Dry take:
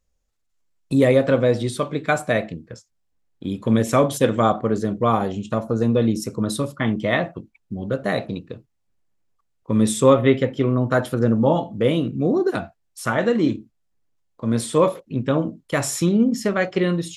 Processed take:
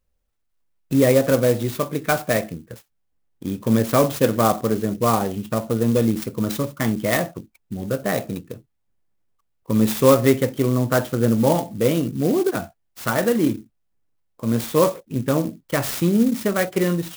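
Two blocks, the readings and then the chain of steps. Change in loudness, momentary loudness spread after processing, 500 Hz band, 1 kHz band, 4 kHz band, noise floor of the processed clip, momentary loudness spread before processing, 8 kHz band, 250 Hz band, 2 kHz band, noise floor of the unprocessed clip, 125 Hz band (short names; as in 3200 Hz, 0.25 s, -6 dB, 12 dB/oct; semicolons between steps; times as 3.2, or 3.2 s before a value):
0.0 dB, 13 LU, 0.0 dB, -0.5 dB, +0.5 dB, -71 dBFS, 13 LU, +1.0 dB, 0.0 dB, -1.0 dB, -71 dBFS, 0.0 dB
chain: clock jitter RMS 0.049 ms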